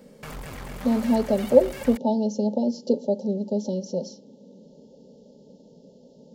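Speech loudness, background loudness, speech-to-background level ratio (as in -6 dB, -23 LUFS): -24.0 LUFS, -39.0 LUFS, 15.0 dB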